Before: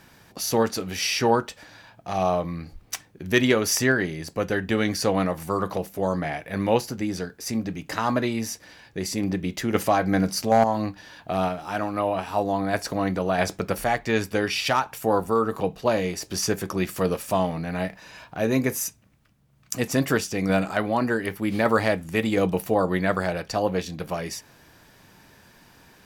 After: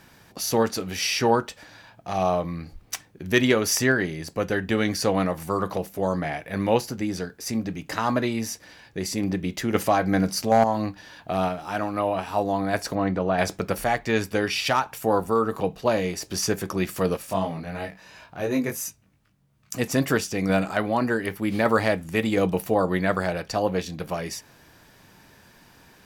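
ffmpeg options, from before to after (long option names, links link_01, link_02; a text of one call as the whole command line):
ffmpeg -i in.wav -filter_complex "[0:a]asplit=3[link_01][link_02][link_03];[link_01]afade=type=out:start_time=12.94:duration=0.02[link_04];[link_02]aemphasis=mode=reproduction:type=75fm,afade=type=in:start_time=12.94:duration=0.02,afade=type=out:start_time=13.37:duration=0.02[link_05];[link_03]afade=type=in:start_time=13.37:duration=0.02[link_06];[link_04][link_05][link_06]amix=inputs=3:normalize=0,asettb=1/sr,asplit=3[link_07][link_08][link_09];[link_07]atrim=end=17.174[link_10];[link_08]atrim=start=17.17:end=19.74,asetpts=PTS-STARTPTS,afade=type=in:duration=0.004:curve=qsin,afade=type=out:start_time=2.566:duration=0.004:curve=qsin,flanger=delay=19:depth=2.5:speed=2.9[link_11];[link_09]atrim=start=19.736[link_12];[link_10][link_11]acrossfade=duration=0.004:curve1=hsin:curve2=qsin[link_13];[link_13][link_12]acrossfade=duration=0.004:curve1=qsin:curve2=hsin" out.wav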